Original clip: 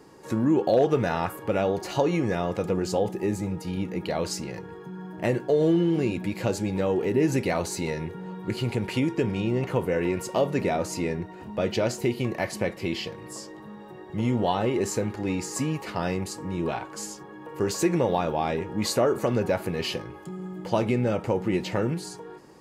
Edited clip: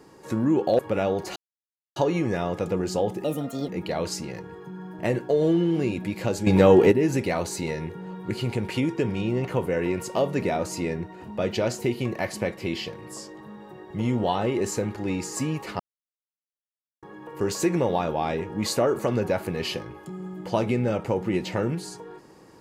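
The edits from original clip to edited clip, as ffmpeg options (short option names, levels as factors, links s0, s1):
-filter_complex "[0:a]asplit=9[s0][s1][s2][s3][s4][s5][s6][s7][s8];[s0]atrim=end=0.792[s9];[s1]atrim=start=1.368:end=1.94,asetpts=PTS-STARTPTS,afade=t=out:st=0.568:d=0.004:c=hsin,apad=pad_dur=0.6[s10];[s2]atrim=start=1.94:end=3.224,asetpts=PTS-STARTPTS,afade=t=in:d=0.004:c=hsin[s11];[s3]atrim=start=3.22:end=3.88,asetpts=PTS-STARTPTS,asetrate=65268,aresample=44100,atrim=end_sample=19666,asetpts=PTS-STARTPTS[s12];[s4]atrim=start=3.876:end=6.662[s13];[s5]atrim=start=6.658:end=7.112,asetpts=PTS-STARTPTS,volume=3.16[s14];[s6]atrim=start=7.108:end=15.99,asetpts=PTS-STARTPTS,afade=t=out:st=8.878:d=0.004:c=hsin[s15];[s7]atrim=start=15.99:end=17.22,asetpts=PTS-STARTPTS,volume=0[s16];[s8]atrim=start=17.22,asetpts=PTS-STARTPTS,afade=t=in:d=0.004:c=hsin[s17];[s10][s11]concat=n=2:v=0:a=1[s18];[s9][s18]acrossfade=d=0.004:c1=hsin:c2=hsin[s19];[s19][s12]acrossfade=d=0.004:c1=hsin:c2=hsin[s20];[s20][s13]acrossfade=d=0.004:c1=hsin:c2=hsin[s21];[s21][s14]acrossfade=d=0.004:c1=hsin:c2=hsin[s22];[s15][s16][s17]concat=n=3:v=0:a=1[s23];[s22][s23]acrossfade=d=0.004:c1=hsin:c2=hsin"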